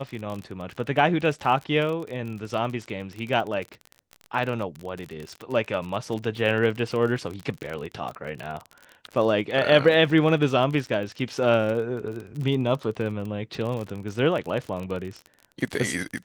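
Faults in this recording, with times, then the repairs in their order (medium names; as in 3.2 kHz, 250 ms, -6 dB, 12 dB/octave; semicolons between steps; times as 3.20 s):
crackle 38 per s -30 dBFS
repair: de-click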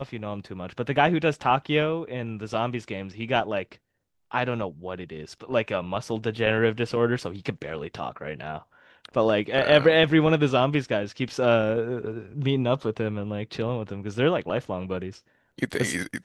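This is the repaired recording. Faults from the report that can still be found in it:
nothing left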